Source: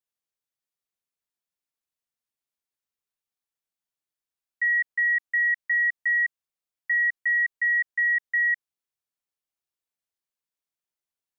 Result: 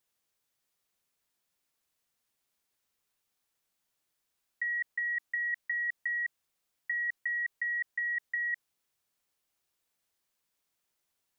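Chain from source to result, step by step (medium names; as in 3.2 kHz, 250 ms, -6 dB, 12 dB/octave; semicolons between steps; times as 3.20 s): compressor with a negative ratio -32 dBFS, ratio -1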